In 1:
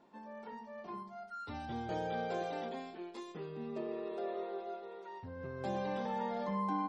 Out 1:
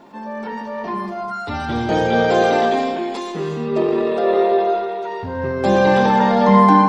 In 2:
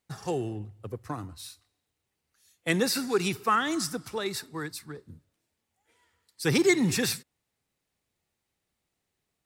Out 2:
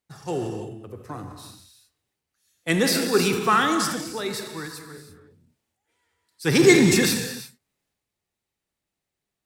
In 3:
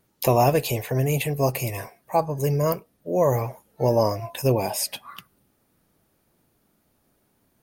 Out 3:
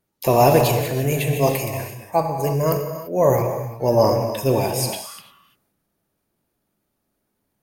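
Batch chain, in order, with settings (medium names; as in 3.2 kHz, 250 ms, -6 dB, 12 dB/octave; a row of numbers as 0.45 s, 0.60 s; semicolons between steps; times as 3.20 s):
gated-style reverb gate 370 ms flat, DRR 4 dB; transient shaper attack -2 dB, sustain +5 dB; upward expansion 1.5:1, over -42 dBFS; peak normalisation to -1.5 dBFS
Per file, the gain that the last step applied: +23.5 dB, +8.0 dB, +4.5 dB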